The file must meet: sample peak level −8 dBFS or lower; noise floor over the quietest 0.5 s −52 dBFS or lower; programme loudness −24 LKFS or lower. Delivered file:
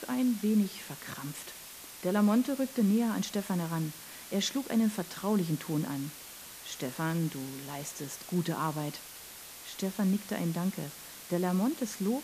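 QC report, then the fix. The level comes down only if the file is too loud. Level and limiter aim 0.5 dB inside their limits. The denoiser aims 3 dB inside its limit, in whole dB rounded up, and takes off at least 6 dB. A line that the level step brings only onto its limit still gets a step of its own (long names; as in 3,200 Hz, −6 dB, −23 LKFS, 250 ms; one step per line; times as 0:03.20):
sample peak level −15.5 dBFS: in spec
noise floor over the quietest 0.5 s −48 dBFS: out of spec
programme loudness −32.0 LKFS: in spec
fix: broadband denoise 7 dB, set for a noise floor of −48 dBFS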